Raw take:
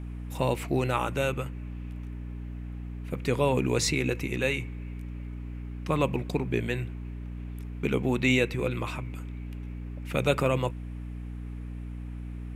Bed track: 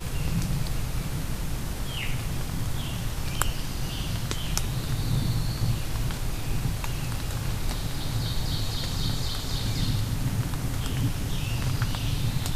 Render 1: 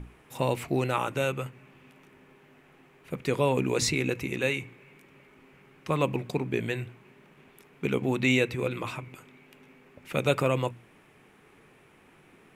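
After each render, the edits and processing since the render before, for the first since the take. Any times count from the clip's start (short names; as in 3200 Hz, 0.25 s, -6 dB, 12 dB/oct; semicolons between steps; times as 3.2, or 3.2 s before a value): notches 60/120/180/240/300 Hz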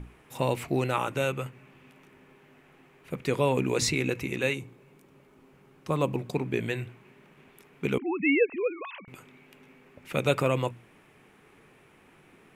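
4.53–6.33 bell 2200 Hz -12.5 dB -> -5.5 dB 1.2 oct; 7.98–9.08 sine-wave speech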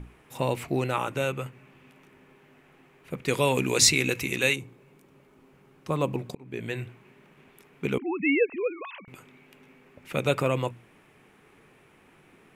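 3.28–4.56 high shelf 2300 Hz +11.5 dB; 6.35–6.79 fade in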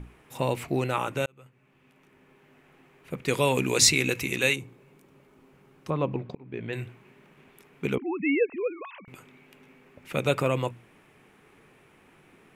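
1.26–3.22 fade in equal-power; 5.9–6.73 air absorption 250 m; 7.95–9.05 air absorption 280 m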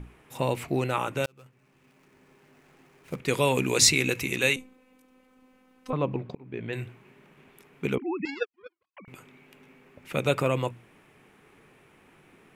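1.24–3.19 switching dead time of 0.095 ms; 4.56–5.93 robotiser 257 Hz; 8.25–8.97 power-law curve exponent 3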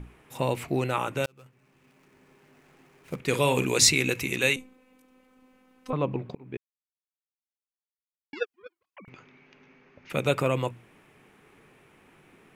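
3.23–3.65 doubler 48 ms -10 dB; 6.57–8.33 mute; 9.09–10.1 rippled Chebyshev low-pass 6500 Hz, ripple 3 dB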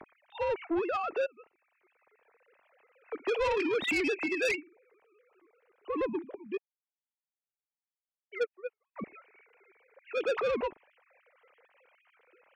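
sine-wave speech; soft clip -25 dBFS, distortion -8 dB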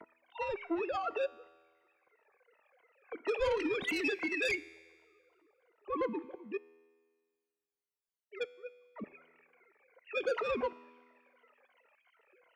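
moving spectral ripple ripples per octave 1.9, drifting -2.8 Hz, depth 16 dB; resonator 82 Hz, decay 1.6 s, harmonics all, mix 50%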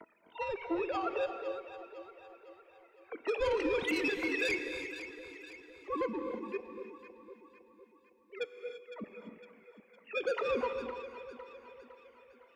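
echo with dull and thin repeats by turns 0.254 s, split 990 Hz, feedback 69%, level -8.5 dB; non-linear reverb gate 0.36 s rising, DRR 8.5 dB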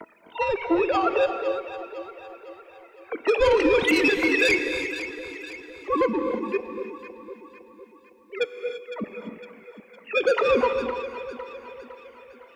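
gain +12 dB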